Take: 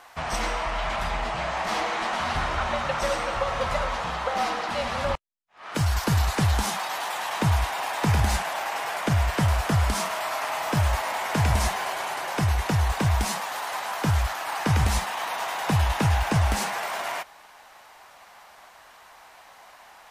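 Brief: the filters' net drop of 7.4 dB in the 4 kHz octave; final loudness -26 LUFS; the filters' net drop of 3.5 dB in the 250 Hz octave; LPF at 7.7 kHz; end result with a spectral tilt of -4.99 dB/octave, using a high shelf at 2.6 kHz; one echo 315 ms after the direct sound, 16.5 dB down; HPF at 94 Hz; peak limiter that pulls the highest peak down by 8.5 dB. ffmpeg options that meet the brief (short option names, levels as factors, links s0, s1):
-af "highpass=94,lowpass=7700,equalizer=f=250:t=o:g=-5,highshelf=f=2600:g=-6,equalizer=f=4000:t=o:g=-4.5,alimiter=limit=0.0794:level=0:latency=1,aecho=1:1:315:0.15,volume=1.78"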